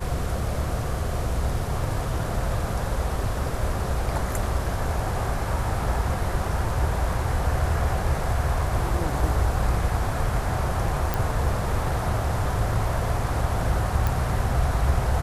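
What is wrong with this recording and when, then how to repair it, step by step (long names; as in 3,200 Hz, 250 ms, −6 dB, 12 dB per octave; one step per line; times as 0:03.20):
0:11.14: click
0:14.07: click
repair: click removal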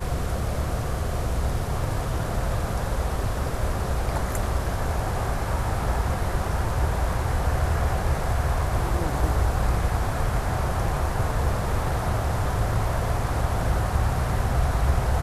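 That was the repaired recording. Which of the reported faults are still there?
none of them is left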